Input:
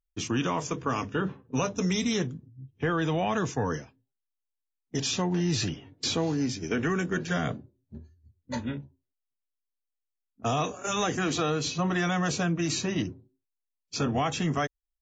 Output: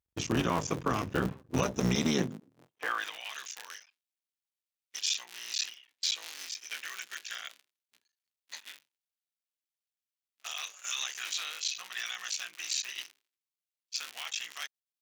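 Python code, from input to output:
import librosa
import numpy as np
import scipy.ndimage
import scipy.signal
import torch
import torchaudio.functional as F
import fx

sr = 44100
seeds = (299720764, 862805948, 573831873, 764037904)

y = fx.cycle_switch(x, sr, every=3, mode='muted')
y = fx.filter_sweep_highpass(y, sr, from_hz=68.0, to_hz=2700.0, start_s=1.91, end_s=3.22, q=1.1)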